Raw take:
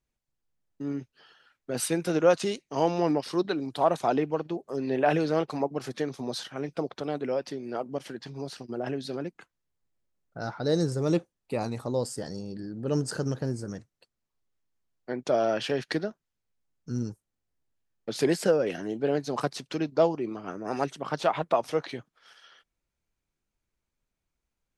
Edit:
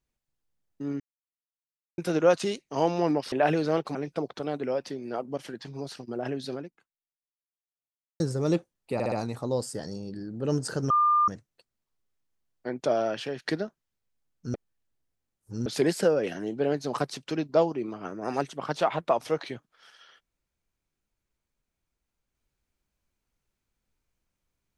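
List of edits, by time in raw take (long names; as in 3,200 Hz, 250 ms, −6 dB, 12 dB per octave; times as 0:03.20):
0:01.00–0:01.98: silence
0:03.32–0:04.95: remove
0:05.58–0:06.56: remove
0:09.15–0:10.81: fade out exponential
0:11.55: stutter 0.06 s, 4 plays
0:13.33–0:13.71: beep over 1,200 Hz −18.5 dBFS
0:15.28–0:15.85: fade out, to −7.5 dB
0:16.97–0:18.09: reverse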